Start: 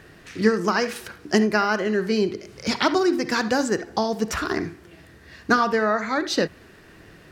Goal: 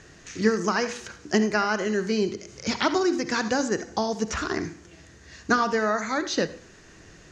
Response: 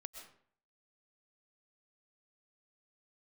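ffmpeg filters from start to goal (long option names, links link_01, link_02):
-filter_complex "[0:a]acrossover=split=4200[link_01][link_02];[link_02]acompressor=threshold=-45dB:ratio=4:attack=1:release=60[link_03];[link_01][link_03]amix=inputs=2:normalize=0,lowpass=frequency=6600:width_type=q:width=6,asplit=2[link_04][link_05];[1:a]atrim=start_sample=2205,asetrate=70560,aresample=44100,lowshelf=frequency=110:gain=11.5[link_06];[link_05][link_06]afir=irnorm=-1:irlink=0,volume=0dB[link_07];[link_04][link_07]amix=inputs=2:normalize=0,volume=-5.5dB"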